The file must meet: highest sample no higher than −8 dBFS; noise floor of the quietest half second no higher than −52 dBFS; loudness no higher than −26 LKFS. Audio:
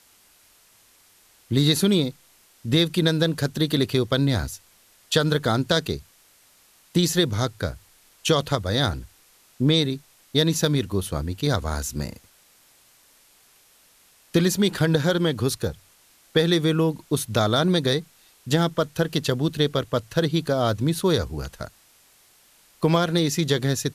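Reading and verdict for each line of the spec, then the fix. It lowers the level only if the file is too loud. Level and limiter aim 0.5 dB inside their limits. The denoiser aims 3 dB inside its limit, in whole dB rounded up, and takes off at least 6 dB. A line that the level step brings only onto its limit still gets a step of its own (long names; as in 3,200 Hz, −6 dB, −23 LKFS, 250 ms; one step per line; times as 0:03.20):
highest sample −5.5 dBFS: out of spec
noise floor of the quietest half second −57 dBFS: in spec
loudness −23.0 LKFS: out of spec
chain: level −3.5 dB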